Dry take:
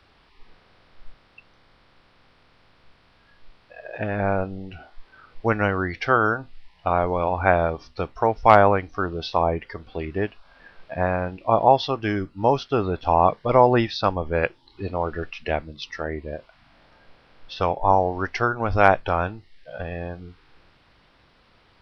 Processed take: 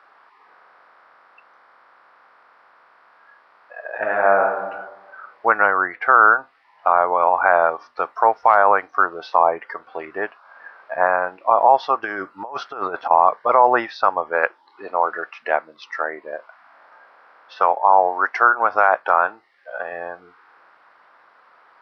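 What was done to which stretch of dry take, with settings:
0:03.95–0:04.59: thrown reverb, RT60 1.2 s, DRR 1 dB
0:05.66–0:06.28: low-pass filter 2,300 Hz
0:08.02–0:08.86: high-shelf EQ 5,000 Hz +6 dB
0:12.03–0:13.11: compressor whose output falls as the input rises −26 dBFS, ratio −0.5
0:14.29–0:19.92: Bessel high-pass filter 170 Hz
whole clip: high-pass filter 800 Hz 12 dB per octave; high shelf with overshoot 2,100 Hz −14 dB, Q 1.5; boost into a limiter +10.5 dB; level −1 dB

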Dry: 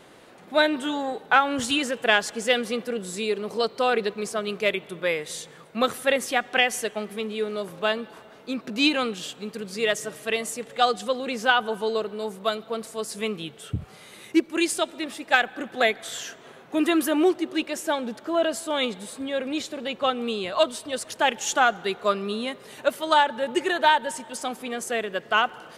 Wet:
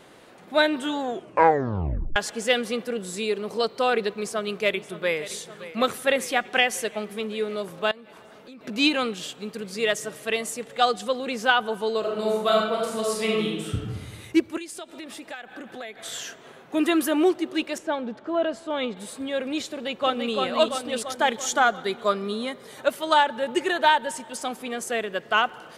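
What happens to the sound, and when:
0:01.01: tape stop 1.15 s
0:04.10–0:05.18: delay throw 570 ms, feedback 75%, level −15.5 dB
0:07.91–0:08.61: downward compressor 5 to 1, threshold −43 dBFS
0:11.99–0:13.75: thrown reverb, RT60 1.2 s, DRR −3.5 dB
0:14.57–0:15.98: downward compressor 5 to 1, threshold −35 dBFS
0:17.78–0:18.97: head-to-tape spacing loss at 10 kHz 20 dB
0:19.71–0:20.34: delay throw 340 ms, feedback 65%, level −3.5 dB
0:21.02–0:22.84: notch filter 2,700 Hz, Q 5.8

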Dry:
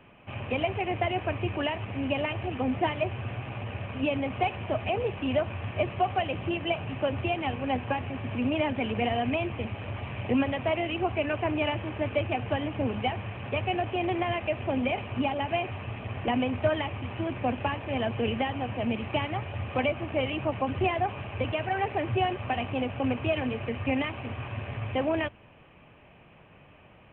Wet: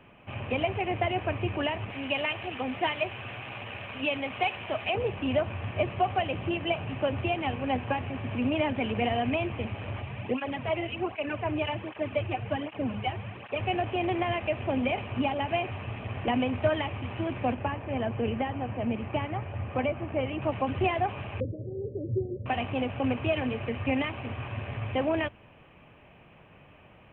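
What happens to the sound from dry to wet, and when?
0:01.90–0:04.95: spectral tilt +3 dB per octave
0:10.02–0:13.60: through-zero flanger with one copy inverted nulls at 1.3 Hz, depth 4.7 ms
0:17.54–0:20.42: high-frequency loss of the air 420 metres
0:21.40–0:22.46: Chebyshev low-pass with heavy ripple 560 Hz, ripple 3 dB

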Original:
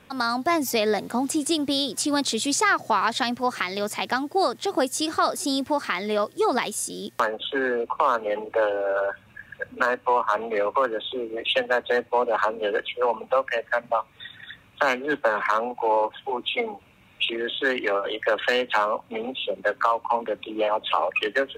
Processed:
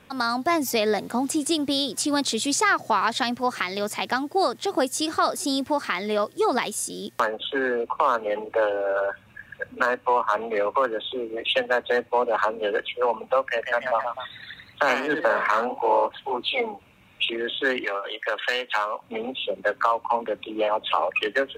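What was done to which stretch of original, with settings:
0:13.42–0:16.73: delay with pitch and tempo change per echo 153 ms, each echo +1 semitone, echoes 2, each echo −6 dB
0:17.84–0:19.02: high-pass filter 960 Hz 6 dB per octave

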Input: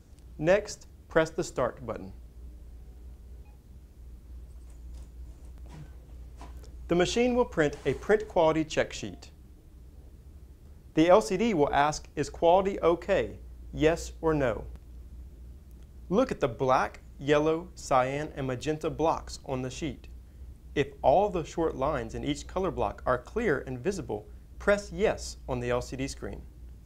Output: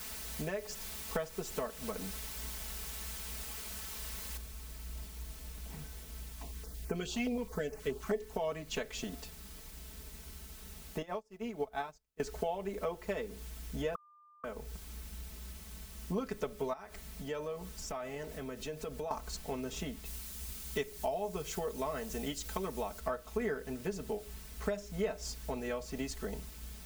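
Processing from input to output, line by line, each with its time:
0:04.37: noise floor change −44 dB −53 dB
0:06.32–0:08.33: notch on a step sequencer 9.5 Hz 460–3,500 Hz
0:11.02–0:12.20: expander for the loud parts 2.5 to 1, over −42 dBFS
0:13.95–0:14.44: beep over 1,200 Hz −14 dBFS
0:16.73–0:19.11: downward compressor 3 to 1, threshold −39 dBFS
0:20.05–0:23.00: high-shelf EQ 3,500 Hz +8 dB
whole clip: downward compressor 6 to 1, threshold −33 dBFS; comb filter 4.6 ms, depth 96%; level −3 dB

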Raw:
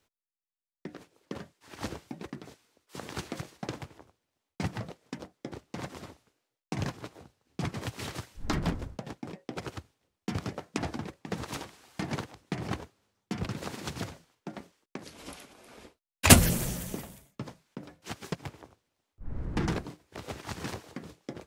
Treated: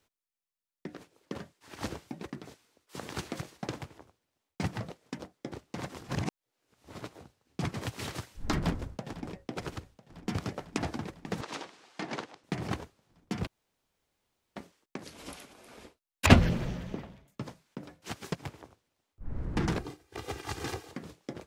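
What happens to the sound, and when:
0:06.01–0:07.00: reverse
0:08.59–0:09.40: delay throw 500 ms, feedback 75%, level −15.5 dB
0:11.41–0:12.44: band-pass filter 280–6,200 Hz
0:13.47–0:14.56: fill with room tone
0:16.26–0:17.28: high-frequency loss of the air 240 metres
0:19.80–0:20.91: comb filter 2.5 ms

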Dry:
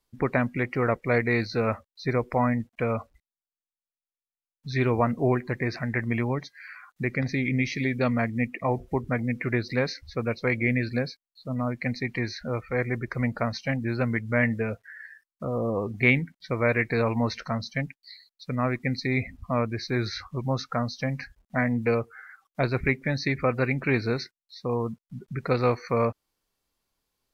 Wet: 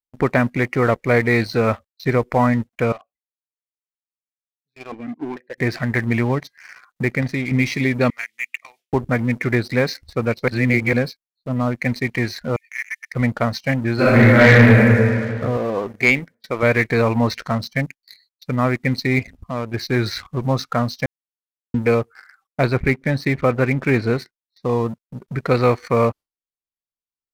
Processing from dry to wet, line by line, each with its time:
0:02.92–0:05.58: formant filter that steps through the vowels 4.5 Hz
0:07.08–0:07.51: fade out, to −6.5 dB
0:08.10–0:08.93: high-pass with resonance 2,800 Hz, resonance Q 1.6
0:10.48–0:10.93: reverse
0:12.56–0:13.14: linear-phase brick-wall high-pass 1,700 Hz
0:13.94–0:14.88: thrown reverb, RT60 2.1 s, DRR −10.5 dB
0:15.57–0:16.63: parametric band 68 Hz −13 dB 3 octaves
0:19.19–0:19.74: downward compressor 1.5 to 1, threshold −41 dBFS
0:21.06–0:21.74: silence
0:22.74–0:24.63: high-shelf EQ 3,300 Hz −9.5 dB
whole clip: noise gate with hold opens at −40 dBFS; leveller curve on the samples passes 2

